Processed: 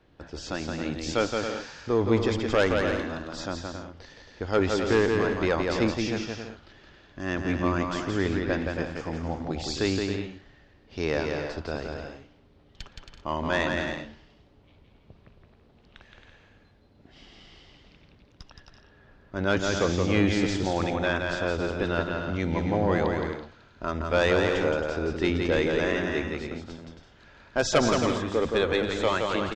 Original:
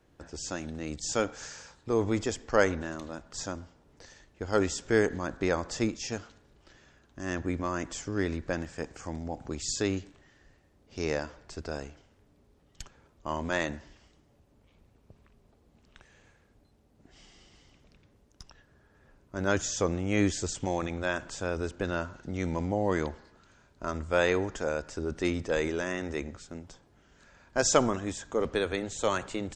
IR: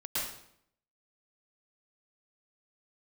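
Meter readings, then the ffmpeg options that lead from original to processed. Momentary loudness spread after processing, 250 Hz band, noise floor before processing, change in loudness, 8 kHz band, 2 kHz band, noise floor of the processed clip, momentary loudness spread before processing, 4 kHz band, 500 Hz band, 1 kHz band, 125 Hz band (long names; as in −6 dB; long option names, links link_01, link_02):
14 LU, +5.0 dB, −64 dBFS, +4.5 dB, −4.5 dB, +5.0 dB, −58 dBFS, 15 LU, +6.0 dB, +4.5 dB, +4.5 dB, +5.5 dB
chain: -af "highshelf=frequency=5600:width_type=q:width=1.5:gain=-12,aeval=exprs='0.398*sin(PI/2*2*val(0)/0.398)':channel_layout=same,aecho=1:1:170|272|333.2|369.9|392:0.631|0.398|0.251|0.158|0.1,volume=-6.5dB"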